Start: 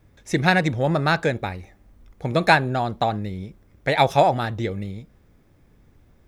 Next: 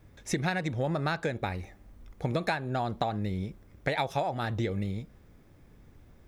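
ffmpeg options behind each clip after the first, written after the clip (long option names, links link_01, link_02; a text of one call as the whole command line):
ffmpeg -i in.wav -af "acompressor=threshold=-26dB:ratio=10" out.wav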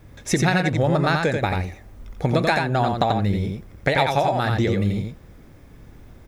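ffmpeg -i in.wav -af "aecho=1:1:88:0.631,volume=9dB" out.wav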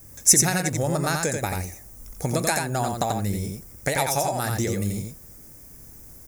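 ffmpeg -i in.wav -af "aexciter=amount=12.8:drive=5.3:freq=5400,volume=-5dB" out.wav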